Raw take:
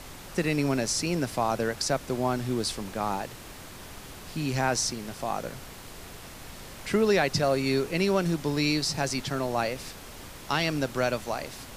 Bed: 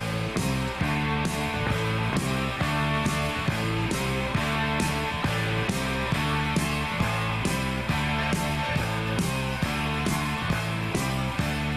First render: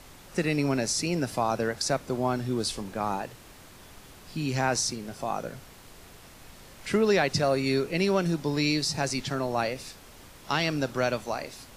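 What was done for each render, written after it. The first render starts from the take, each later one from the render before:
noise reduction from a noise print 6 dB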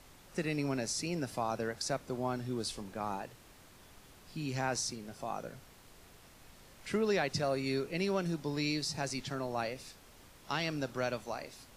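level −8 dB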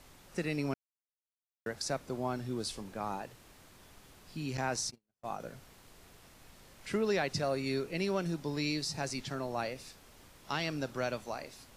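0:00.74–0:01.66: silence
0:04.57–0:05.40: noise gate −40 dBFS, range −43 dB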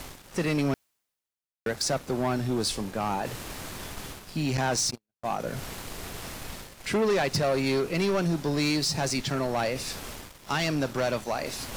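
reversed playback
upward compression, threshold −39 dBFS
reversed playback
leveller curve on the samples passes 3

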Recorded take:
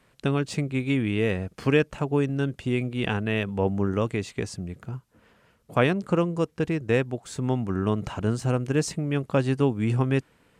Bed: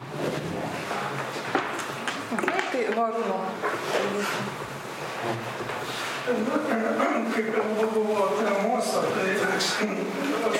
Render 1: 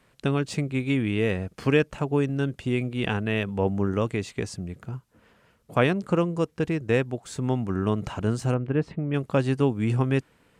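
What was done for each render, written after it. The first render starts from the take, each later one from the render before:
0:08.54–0:09.14: high-frequency loss of the air 460 metres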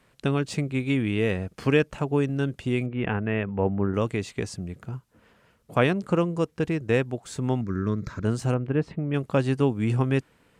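0:02.86–0:03.94: low-pass filter 2,400 Hz 24 dB per octave
0:07.61–0:08.25: phaser with its sweep stopped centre 2,900 Hz, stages 6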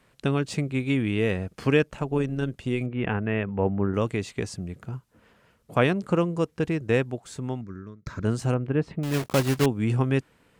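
0:01.83–0:02.81: amplitude modulation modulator 120 Hz, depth 25%
0:07.01–0:08.06: fade out
0:09.03–0:09.66: one scale factor per block 3 bits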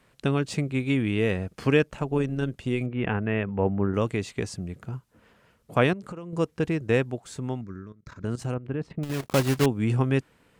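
0:05.93–0:06.33: downward compressor 8 to 1, threshold −34 dBFS
0:07.86–0:09.32: output level in coarse steps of 14 dB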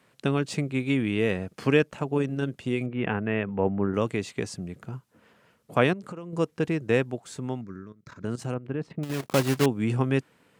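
high-pass filter 120 Hz 12 dB per octave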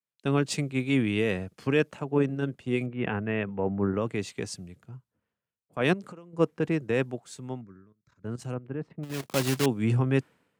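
brickwall limiter −15.5 dBFS, peak gain reduction 8.5 dB
multiband upward and downward expander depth 100%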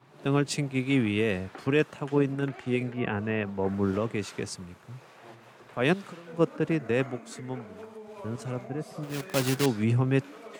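mix in bed −20 dB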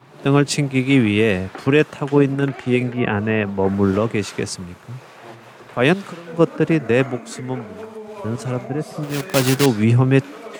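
level +10 dB
brickwall limiter −2 dBFS, peak gain reduction 2.5 dB

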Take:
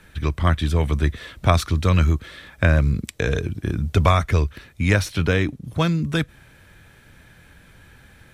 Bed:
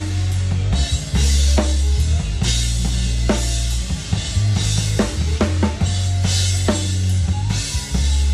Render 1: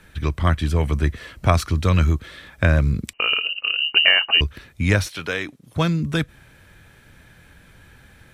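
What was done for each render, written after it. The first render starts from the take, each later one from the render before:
0:00.51–0:01.78: notch filter 3,600 Hz, Q 8.2
0:03.13–0:04.41: voice inversion scrambler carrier 2,900 Hz
0:05.08–0:05.75: high-pass filter 800 Hz 6 dB per octave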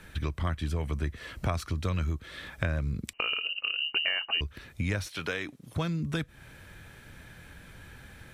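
downward compressor 3 to 1, threshold −31 dBFS, peak gain reduction 15 dB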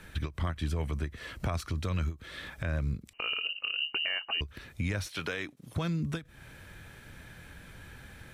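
brickwall limiter −22 dBFS, peak gain reduction 8.5 dB
every ending faded ahead of time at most 260 dB per second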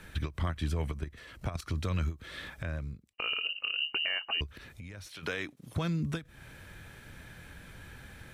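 0:00.92–0:01.67: output level in coarse steps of 10 dB
0:02.42–0:03.18: fade out
0:04.50–0:05.23: downward compressor 4 to 1, threshold −44 dBFS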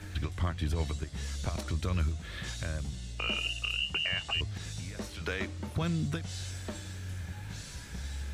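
mix in bed −22 dB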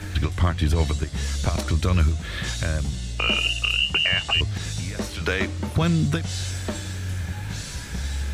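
level +10.5 dB

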